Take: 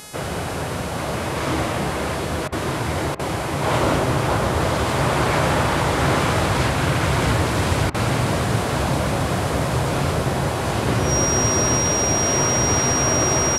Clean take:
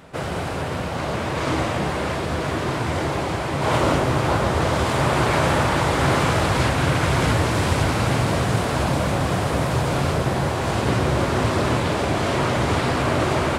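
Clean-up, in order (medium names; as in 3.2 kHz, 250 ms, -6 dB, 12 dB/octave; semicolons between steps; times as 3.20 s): de-hum 422.8 Hz, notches 28; band-stop 5.7 kHz, Q 30; interpolate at 2.48/3.15/7.90 s, 42 ms; inverse comb 185 ms -16 dB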